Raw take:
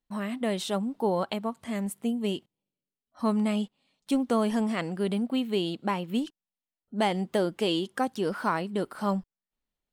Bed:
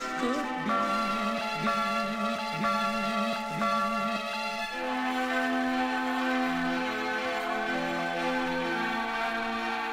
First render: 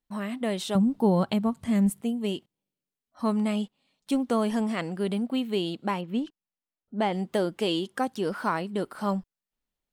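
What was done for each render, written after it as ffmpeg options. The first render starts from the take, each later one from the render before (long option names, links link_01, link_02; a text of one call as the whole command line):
ffmpeg -i in.wav -filter_complex "[0:a]asettb=1/sr,asplit=3[link_01][link_02][link_03];[link_01]atrim=end=0.754[link_04];[link_02]atrim=start=0.75:end=2.01,asetpts=PTS-STARTPTS,afade=type=in:duration=0.004:curve=qsin,afade=type=out:start_time=1.256:duration=0.004:curve=qsin,bass=frequency=250:gain=14,treble=frequency=4000:gain=2[link_05];[link_03]atrim=start=2.006[link_06];[link_04][link_05]acrossfade=duration=0.004:curve1=hsin:curve2=qsin[link_07];[link_07][link_06]acrossfade=duration=0.004:curve1=qsin:curve2=hsin,asettb=1/sr,asplit=3[link_08][link_09][link_10];[link_08]atrim=end=6.014[link_11];[link_09]atrim=start=6.01:end=7.13,asetpts=PTS-STARTPTS,afade=type=in:duration=0.004:curve=qsin,afade=type=out:start_time=1.116:duration=0.004:curve=qsin,lowpass=frequency=2200:poles=1[link_12];[link_10]atrim=start=7.126[link_13];[link_11][link_12]acrossfade=duration=0.004:curve1=hsin:curve2=qsin[link_14];[link_14][link_13]acrossfade=duration=0.004:curve1=qsin:curve2=hsin" out.wav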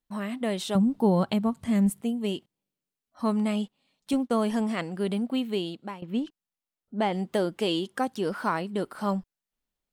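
ffmpeg -i in.wav -filter_complex "[0:a]asettb=1/sr,asplit=3[link_01][link_02][link_03];[link_01]atrim=end=4.134[link_04];[link_02]atrim=start=4.13:end=4.94,asetpts=PTS-STARTPTS,afade=type=in:duration=0.004:curve=qsin,afade=type=out:start_time=0.806:duration=0.004:curve=qsin,agate=range=-33dB:threshold=-31dB:ratio=3:release=100:detection=peak[link_05];[link_03]atrim=start=4.936[link_06];[link_04][link_05]acrossfade=duration=0.004:curve1=hsin:curve2=qsin[link_07];[link_07][link_06]acrossfade=duration=0.004:curve1=qsin:curve2=hsin,asplit=2[link_08][link_09];[link_08]atrim=end=6.02,asetpts=PTS-STARTPTS,afade=type=out:start_time=5.47:duration=0.55:silence=0.177828[link_10];[link_09]atrim=start=6.02,asetpts=PTS-STARTPTS,afade=type=in:duration=0.004:curve=hsin:silence=0.177828[link_11];[link_10][link_11]concat=n=2:v=0:a=1" out.wav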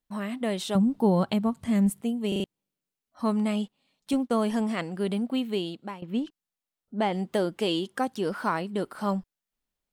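ffmpeg -i in.wav -filter_complex "[0:a]asplit=5[link_01][link_02][link_03][link_04][link_05];[link_01]atrim=end=2.322[link_06];[link_02]atrim=start=2.278:end=2.322[link_07];[link_03]atrim=start=2.278:end=2.322[link_08];[link_04]atrim=start=2.278:end=2.322[link_09];[link_05]atrim=start=2.438[link_10];[link_06][link_07]acrossfade=duration=0.004:curve1=hsin:curve2=hsin[link_11];[link_11][link_08]acrossfade=duration=0.004:curve1=hsin:curve2=hsin[link_12];[link_12][link_09]acrossfade=duration=0.004:curve1=hsin:curve2=hsin[link_13];[link_13][link_10]acrossfade=duration=0.004:curve1=hsin:curve2=hsin" out.wav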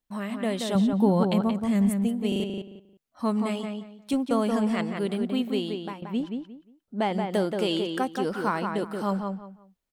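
ffmpeg -i in.wav -filter_complex "[0:a]asplit=2[link_01][link_02];[link_02]adelay=177,lowpass=frequency=2800:poles=1,volume=-4.5dB,asplit=2[link_03][link_04];[link_04]adelay=177,lowpass=frequency=2800:poles=1,volume=0.25,asplit=2[link_05][link_06];[link_06]adelay=177,lowpass=frequency=2800:poles=1,volume=0.25[link_07];[link_01][link_03][link_05][link_07]amix=inputs=4:normalize=0" out.wav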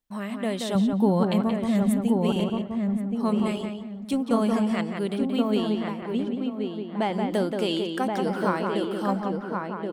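ffmpeg -i in.wav -filter_complex "[0:a]asplit=2[link_01][link_02];[link_02]adelay=1076,lowpass=frequency=1600:poles=1,volume=-3dB,asplit=2[link_03][link_04];[link_04]adelay=1076,lowpass=frequency=1600:poles=1,volume=0.26,asplit=2[link_05][link_06];[link_06]adelay=1076,lowpass=frequency=1600:poles=1,volume=0.26,asplit=2[link_07][link_08];[link_08]adelay=1076,lowpass=frequency=1600:poles=1,volume=0.26[link_09];[link_01][link_03][link_05][link_07][link_09]amix=inputs=5:normalize=0" out.wav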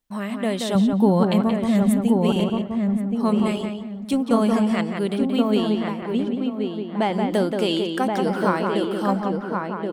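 ffmpeg -i in.wav -af "volume=4dB" out.wav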